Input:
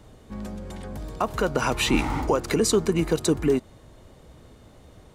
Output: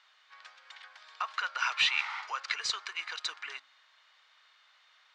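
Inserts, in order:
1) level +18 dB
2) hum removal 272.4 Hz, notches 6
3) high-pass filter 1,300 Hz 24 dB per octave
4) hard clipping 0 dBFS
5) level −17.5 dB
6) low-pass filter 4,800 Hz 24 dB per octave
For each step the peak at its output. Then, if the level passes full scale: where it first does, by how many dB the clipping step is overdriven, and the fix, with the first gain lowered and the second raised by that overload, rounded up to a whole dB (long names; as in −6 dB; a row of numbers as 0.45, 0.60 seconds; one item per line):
+7.5, +7.5, +7.0, 0.0, −17.5, −16.0 dBFS
step 1, 7.0 dB
step 1 +11 dB, step 5 −10.5 dB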